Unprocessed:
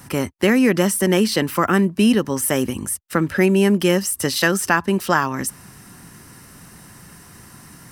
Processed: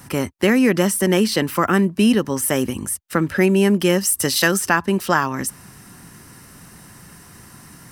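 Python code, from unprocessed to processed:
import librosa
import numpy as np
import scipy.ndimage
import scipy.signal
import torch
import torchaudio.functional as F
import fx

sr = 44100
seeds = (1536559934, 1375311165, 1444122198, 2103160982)

y = fx.high_shelf(x, sr, hz=4800.0, db=5.5, at=(4.03, 4.59))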